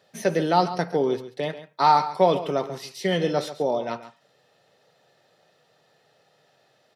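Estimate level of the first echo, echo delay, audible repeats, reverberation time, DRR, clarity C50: -13.5 dB, 0.137 s, 1, none, none, none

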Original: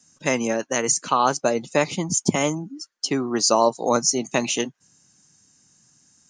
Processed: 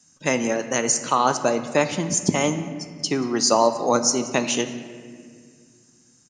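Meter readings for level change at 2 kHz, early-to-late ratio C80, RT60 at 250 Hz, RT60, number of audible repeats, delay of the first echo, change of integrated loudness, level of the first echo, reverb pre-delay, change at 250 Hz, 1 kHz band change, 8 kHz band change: +0.5 dB, 11.5 dB, 3.1 s, 2.0 s, 1, 0.181 s, +0.5 dB, -21.5 dB, 12 ms, +1.0 dB, +0.5 dB, +0.5 dB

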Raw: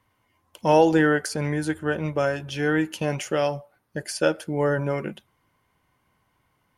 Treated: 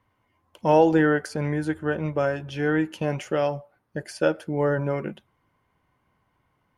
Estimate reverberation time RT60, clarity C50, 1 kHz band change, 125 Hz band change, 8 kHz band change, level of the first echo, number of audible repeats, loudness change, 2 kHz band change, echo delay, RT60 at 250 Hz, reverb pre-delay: none, none, -1.0 dB, 0.0 dB, -9.0 dB, none, none, -0.5 dB, -2.0 dB, none, none, none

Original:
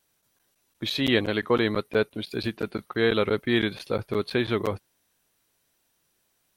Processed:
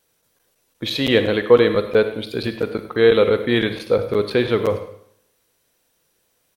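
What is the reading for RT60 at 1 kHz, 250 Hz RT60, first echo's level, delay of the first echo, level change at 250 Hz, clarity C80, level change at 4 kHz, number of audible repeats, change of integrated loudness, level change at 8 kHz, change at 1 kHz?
0.70 s, 0.70 s, -15.5 dB, 0.1 s, +4.5 dB, 11.5 dB, +4.5 dB, 1, +7.5 dB, n/a, +5.0 dB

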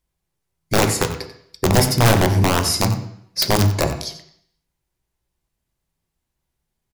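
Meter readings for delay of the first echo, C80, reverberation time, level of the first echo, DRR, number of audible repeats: 91 ms, 10.5 dB, 0.70 s, -13.5 dB, 5.0 dB, 1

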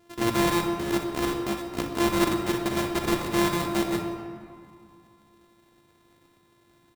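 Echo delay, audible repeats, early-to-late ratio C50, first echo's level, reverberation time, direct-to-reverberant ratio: 62 ms, 2, 4.0 dB, -11.0 dB, 2.3 s, 3.5 dB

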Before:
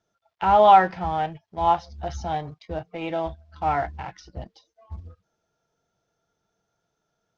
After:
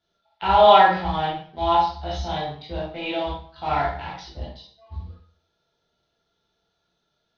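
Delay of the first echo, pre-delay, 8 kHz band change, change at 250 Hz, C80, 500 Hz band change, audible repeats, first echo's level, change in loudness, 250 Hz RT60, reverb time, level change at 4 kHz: none, 8 ms, n/a, +1.5 dB, 7.5 dB, +3.0 dB, none, none, +1.5 dB, 0.45 s, 0.50 s, +10.5 dB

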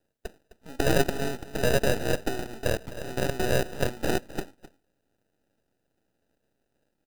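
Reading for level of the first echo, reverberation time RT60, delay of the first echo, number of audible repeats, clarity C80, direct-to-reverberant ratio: -16.5 dB, none, 0.259 s, 1, none, none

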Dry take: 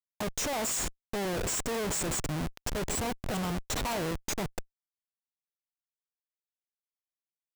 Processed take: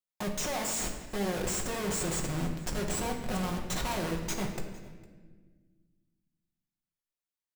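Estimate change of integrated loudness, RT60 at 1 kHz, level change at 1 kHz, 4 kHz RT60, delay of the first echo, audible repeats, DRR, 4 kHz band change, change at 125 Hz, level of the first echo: -1.0 dB, 1.4 s, -0.5 dB, 1.3 s, 0.456 s, 1, 1.0 dB, -1.0 dB, +1.0 dB, -22.5 dB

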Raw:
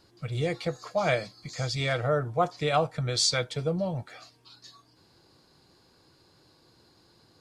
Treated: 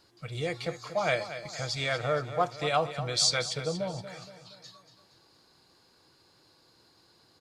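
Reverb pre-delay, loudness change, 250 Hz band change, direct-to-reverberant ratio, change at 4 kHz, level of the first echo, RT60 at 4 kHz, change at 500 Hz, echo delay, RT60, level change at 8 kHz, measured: none, -1.5 dB, -5.0 dB, none, +0.5 dB, -12.0 dB, none, -2.5 dB, 0.235 s, none, +0.5 dB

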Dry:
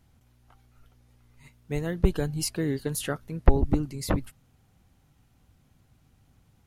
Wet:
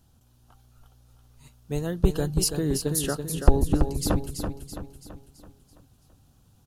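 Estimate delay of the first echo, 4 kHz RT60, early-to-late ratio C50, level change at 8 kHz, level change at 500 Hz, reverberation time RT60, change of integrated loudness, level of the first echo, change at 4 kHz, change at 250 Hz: 0.332 s, none, none, +6.5 dB, +2.0 dB, none, +2.0 dB, -7.0 dB, +4.5 dB, +2.0 dB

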